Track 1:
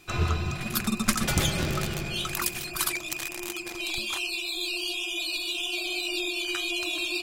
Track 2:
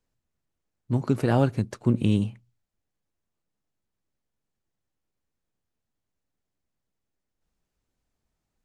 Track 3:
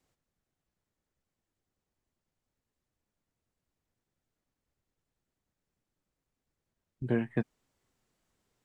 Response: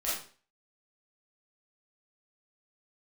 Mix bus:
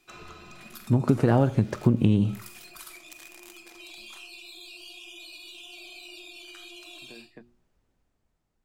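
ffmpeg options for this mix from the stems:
-filter_complex "[0:a]volume=-12dB,asplit=2[link_01][link_02];[link_02]volume=-16dB[link_03];[1:a]dynaudnorm=framelen=150:gausssize=11:maxgain=8dB,highshelf=frequency=3200:gain=-11.5,volume=1.5dB,asplit=3[link_04][link_05][link_06];[link_05]volume=-21dB[link_07];[2:a]bandreject=frequency=60:width_type=h:width=6,bandreject=frequency=120:width_type=h:width=6,bandreject=frequency=180:width_type=h:width=6,bandreject=frequency=240:width_type=h:width=6,bandreject=frequency=300:width_type=h:width=6,bandreject=frequency=360:width_type=h:width=6,volume=-10dB[link_08];[link_06]apad=whole_len=318586[link_09];[link_01][link_09]sidechaincompress=threshold=-30dB:ratio=8:attack=16:release=284[link_10];[link_10][link_08]amix=inputs=2:normalize=0,highpass=200,acompressor=threshold=-44dB:ratio=6,volume=0dB[link_11];[3:a]atrim=start_sample=2205[link_12];[link_03][link_07]amix=inputs=2:normalize=0[link_13];[link_13][link_12]afir=irnorm=-1:irlink=0[link_14];[link_04][link_11][link_14]amix=inputs=3:normalize=0,acompressor=threshold=-16dB:ratio=6"

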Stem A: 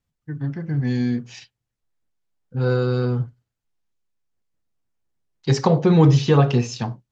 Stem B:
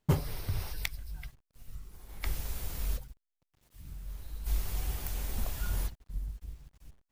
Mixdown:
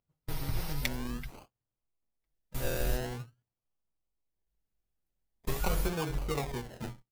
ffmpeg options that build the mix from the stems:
ffmpeg -i stem1.wav -i stem2.wav -filter_complex "[0:a]adynamicequalizer=threshold=0.00562:dfrequency=4800:dqfactor=0.75:tfrequency=4800:tqfactor=0.75:attack=5:release=100:ratio=0.375:range=3.5:mode=cutabove:tftype=bell,acrossover=split=420|1100[link_01][link_02][link_03];[link_01]acompressor=threshold=-31dB:ratio=4[link_04];[link_02]acompressor=threshold=-26dB:ratio=4[link_05];[link_03]acompressor=threshold=-33dB:ratio=4[link_06];[link_04][link_05][link_06]amix=inputs=3:normalize=0,acrusher=samples=32:mix=1:aa=0.000001:lfo=1:lforange=19.2:lforate=0.46,volume=-9.5dB,asplit=2[link_07][link_08];[1:a]aecho=1:1:6.3:0.65,volume=0dB[link_09];[link_08]apad=whole_len=314023[link_10];[link_09][link_10]sidechaingate=range=-55dB:threshold=-54dB:ratio=16:detection=peak[link_11];[link_07][link_11]amix=inputs=2:normalize=0" out.wav

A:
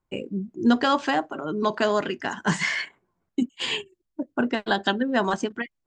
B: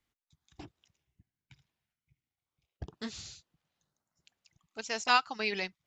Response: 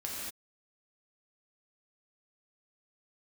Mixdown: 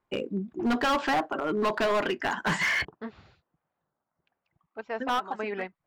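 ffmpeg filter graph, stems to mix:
-filter_complex "[0:a]volume=-1dB,asplit=3[link_01][link_02][link_03];[link_01]atrim=end=2.85,asetpts=PTS-STARTPTS,afade=type=out:start_time=2.846:duration=0.004:curve=hsin[link_04];[link_02]atrim=start=2.85:end=5,asetpts=PTS-STARTPTS,volume=0[link_05];[link_03]atrim=start=5,asetpts=PTS-STARTPTS,afade=type=in:duration=0.004:curve=hsin[link_06];[link_04][link_05][link_06]concat=n=3:v=0:a=1[link_07];[1:a]lowpass=1300,volume=1.5dB,asplit=2[link_08][link_09];[link_09]apad=whole_len=258668[link_10];[link_07][link_10]sidechaincompress=threshold=-42dB:ratio=20:attack=16:release=579[link_11];[link_11][link_08]amix=inputs=2:normalize=0,bandreject=frequency=6200:width=14,asplit=2[link_12][link_13];[link_13]highpass=frequency=720:poles=1,volume=13dB,asoftclip=type=tanh:threshold=-10.5dB[link_14];[link_12][link_14]amix=inputs=2:normalize=0,lowpass=frequency=1600:poles=1,volume=-6dB,asoftclip=type=hard:threshold=-22dB"

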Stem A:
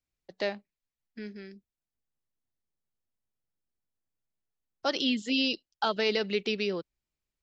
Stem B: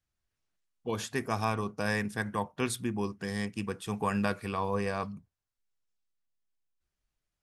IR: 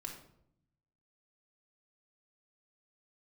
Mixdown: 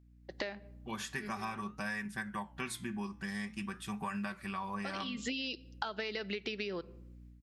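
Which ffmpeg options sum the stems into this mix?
-filter_complex "[0:a]acompressor=threshold=-31dB:ratio=6,aeval=exprs='val(0)+0.00141*(sin(2*PI*60*n/s)+sin(2*PI*2*60*n/s)/2+sin(2*PI*3*60*n/s)/3+sin(2*PI*4*60*n/s)/4+sin(2*PI*5*60*n/s)/5)':channel_layout=same,volume=-4.5dB,asplit=2[link_01][link_02];[link_02]volume=-15dB[link_03];[1:a]equalizer=frequency=450:width_type=o:width=0.58:gain=-11,aecho=1:1:5.2:0.65,flanger=delay=7.8:depth=7.3:regen=-80:speed=0.49:shape=sinusoidal,volume=-10dB,asplit=2[link_04][link_05];[link_05]apad=whole_len=327251[link_06];[link_01][link_06]sidechaincompress=threshold=-59dB:ratio=8:attack=16:release=129[link_07];[2:a]atrim=start_sample=2205[link_08];[link_03][link_08]afir=irnorm=-1:irlink=0[link_09];[link_07][link_04][link_09]amix=inputs=3:normalize=0,dynaudnorm=framelen=220:gausssize=3:maxgain=9dB,equalizer=frequency=1800:width_type=o:width=1.2:gain=6,acompressor=threshold=-35dB:ratio=6"

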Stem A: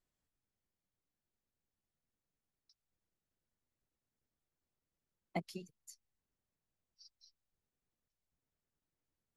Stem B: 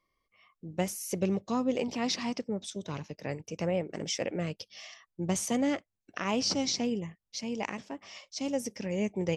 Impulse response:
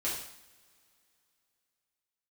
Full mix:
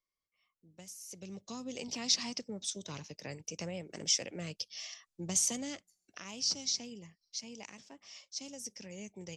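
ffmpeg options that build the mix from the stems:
-filter_complex "[0:a]acompressor=threshold=-47dB:ratio=6,volume=-16.5dB,asplit=2[link_01][link_02];[link_02]volume=-9.5dB[link_03];[1:a]equalizer=frequency=6200:width_type=o:width=2:gain=13.5,acrossover=split=200|3000[link_04][link_05][link_06];[link_05]acompressor=threshold=-33dB:ratio=6[link_07];[link_04][link_07][link_06]amix=inputs=3:normalize=0,volume=-7dB,afade=type=in:start_time=1.1:duration=0.72:silence=0.223872,afade=type=out:start_time=5.53:duration=0.76:silence=0.473151[link_08];[2:a]atrim=start_sample=2205[link_09];[link_03][link_09]afir=irnorm=-1:irlink=0[link_10];[link_01][link_08][link_10]amix=inputs=3:normalize=0"

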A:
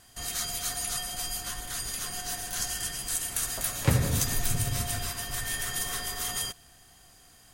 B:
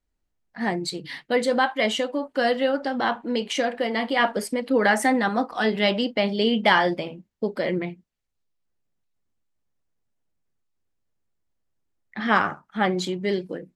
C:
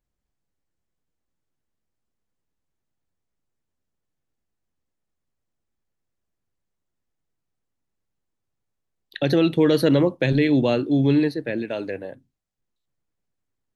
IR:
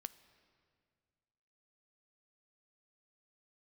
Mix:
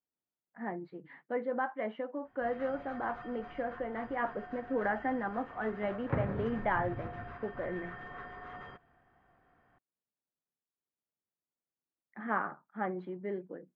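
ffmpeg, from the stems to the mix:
-filter_complex "[0:a]lowshelf=frequency=120:gain=-5.5,adelay=2250,volume=-4.5dB[link_01];[1:a]highpass=140,volume=-11.5dB[link_02];[link_01][link_02]amix=inputs=2:normalize=0,lowpass=frequency=1700:width=0.5412,lowpass=frequency=1700:width=1.3066,lowshelf=frequency=99:gain=-7"

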